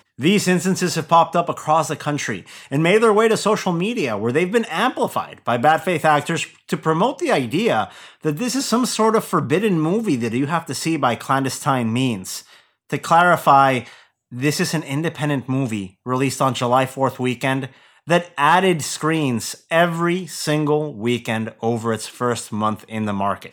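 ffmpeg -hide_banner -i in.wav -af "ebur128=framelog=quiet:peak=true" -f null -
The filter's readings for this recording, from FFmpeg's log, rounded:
Integrated loudness:
  I:         -19.4 LUFS
  Threshold: -29.6 LUFS
Loudness range:
  LRA:         3.1 LU
  Threshold: -39.6 LUFS
  LRA low:   -21.3 LUFS
  LRA high:  -18.2 LUFS
True peak:
  Peak:       -1.9 dBFS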